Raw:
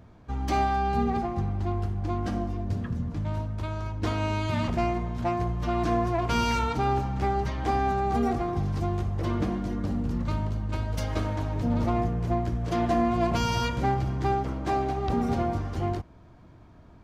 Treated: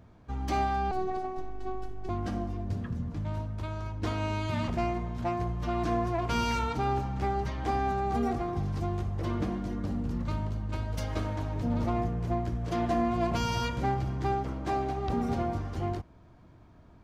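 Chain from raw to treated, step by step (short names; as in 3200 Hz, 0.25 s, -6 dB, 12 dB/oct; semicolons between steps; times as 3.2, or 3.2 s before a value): 0.91–2.09 robotiser 375 Hz; gain -3.5 dB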